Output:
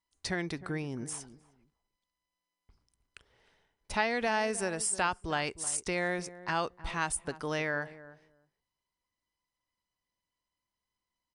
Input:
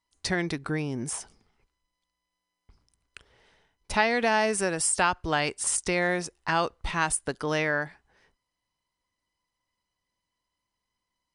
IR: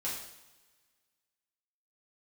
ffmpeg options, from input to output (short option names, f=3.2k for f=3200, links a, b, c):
-filter_complex "[0:a]asplit=2[a][b];[b]adelay=309,lowpass=f=860:p=1,volume=-14.5dB,asplit=2[c][d];[d]adelay=309,lowpass=f=860:p=1,volume=0.17[e];[a][c][e]amix=inputs=3:normalize=0,volume=-6dB"